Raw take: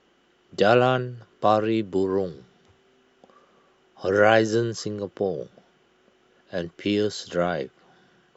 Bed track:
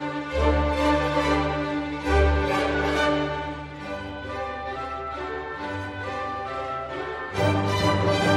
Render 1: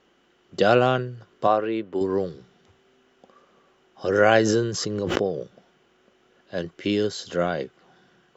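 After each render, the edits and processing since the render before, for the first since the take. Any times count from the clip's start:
0:01.47–0:02.01: bass and treble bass −11 dB, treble −15 dB
0:04.35–0:05.40: background raised ahead of every attack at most 22 dB per second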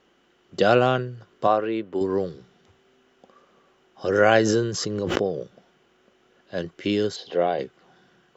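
0:07.16–0:07.59: loudspeaker in its box 200–4,300 Hz, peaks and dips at 210 Hz −8 dB, 440 Hz +5 dB, 770 Hz +8 dB, 1,400 Hz −10 dB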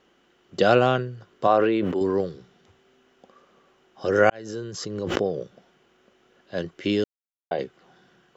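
0:01.47–0:02.21: level that may fall only so fast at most 21 dB per second
0:04.30–0:05.28: fade in
0:07.04–0:07.51: silence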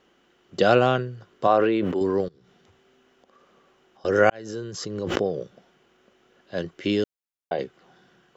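0:02.28–0:04.05: downward compressor 12 to 1, threshold −52 dBFS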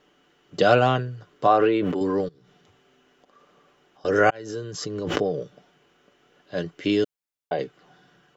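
comb filter 6.8 ms, depth 46%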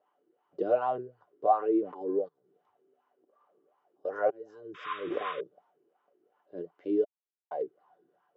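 0:04.74–0:05.41: sound drawn into the spectrogram noise 1,000–3,800 Hz −21 dBFS
LFO wah 2.7 Hz 340–1,000 Hz, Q 6.2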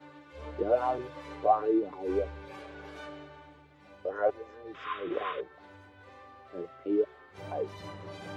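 mix in bed track −22 dB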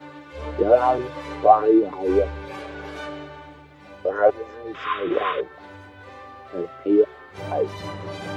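level +10.5 dB

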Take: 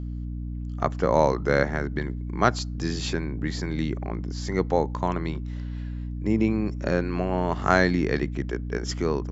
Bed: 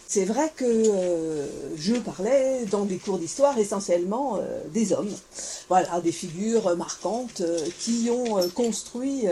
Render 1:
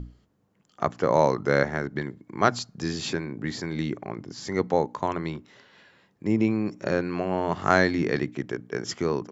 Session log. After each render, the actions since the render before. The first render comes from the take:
mains-hum notches 60/120/180/240/300 Hz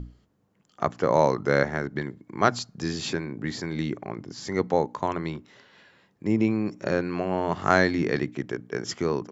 no processing that can be heard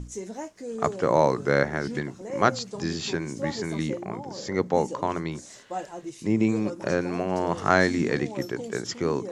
mix in bed −12.5 dB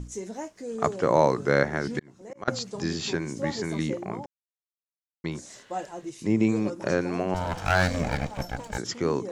0:01.99–0:02.48: volume swells 535 ms
0:04.26–0:05.24: silence
0:07.34–0:08.78: lower of the sound and its delayed copy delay 1.3 ms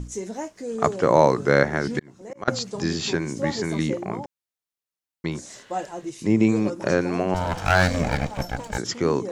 level +4 dB

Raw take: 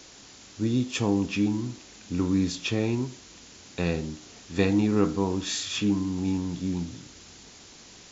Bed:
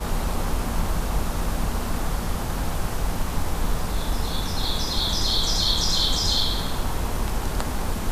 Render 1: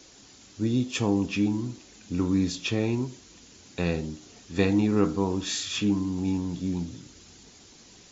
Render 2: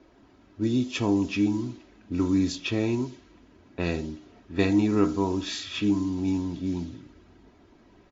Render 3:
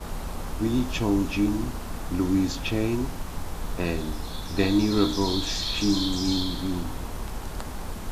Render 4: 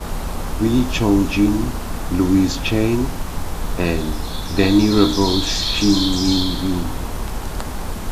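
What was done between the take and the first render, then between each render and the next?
broadband denoise 6 dB, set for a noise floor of −50 dBFS
low-pass that shuts in the quiet parts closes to 1,300 Hz, open at −20 dBFS; comb filter 3.1 ms, depth 38%
mix in bed −8 dB
level +8 dB; brickwall limiter −1 dBFS, peak gain reduction 1 dB

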